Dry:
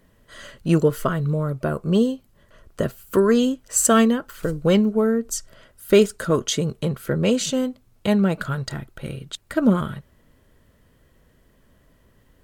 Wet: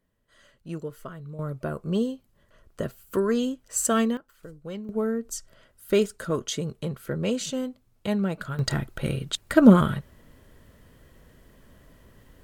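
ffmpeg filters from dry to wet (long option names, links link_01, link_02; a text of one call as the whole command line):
ffmpeg -i in.wav -af "asetnsamples=nb_out_samples=441:pad=0,asendcmd='1.39 volume volume -7dB;4.17 volume volume -19dB;4.89 volume volume -7dB;8.59 volume volume 4dB',volume=-17dB" out.wav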